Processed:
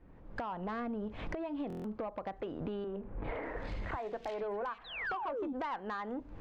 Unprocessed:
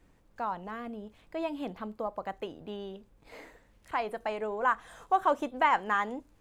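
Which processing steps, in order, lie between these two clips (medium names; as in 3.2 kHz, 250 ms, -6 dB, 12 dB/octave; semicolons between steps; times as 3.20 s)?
recorder AGC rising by 41 dB/s; distance through air 150 m; 4.84–5.53 s: painted sound fall 250–4200 Hz -26 dBFS; treble shelf 3.6 kHz -11.5 dB; compression 5:1, threshold -37 dBFS, peak gain reduction 16 dB; saturation -33.5 dBFS, distortion -16 dB; 2.84–5.07 s: three bands offset in time mids, lows, highs 30/400 ms, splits 200/2600 Hz; buffer glitch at 1.68 s, samples 1024, times 6; tape noise reduction on one side only decoder only; trim +3 dB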